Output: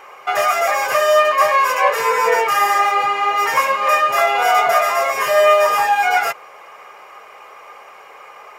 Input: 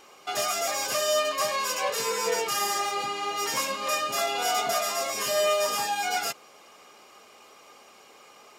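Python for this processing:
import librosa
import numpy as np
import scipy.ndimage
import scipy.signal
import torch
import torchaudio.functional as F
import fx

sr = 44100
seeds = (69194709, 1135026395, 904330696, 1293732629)

y = fx.graphic_eq(x, sr, hz=(250, 500, 1000, 2000, 4000, 8000), db=(-11, 6, 8, 10, -8, -6))
y = y * librosa.db_to_amplitude(5.5)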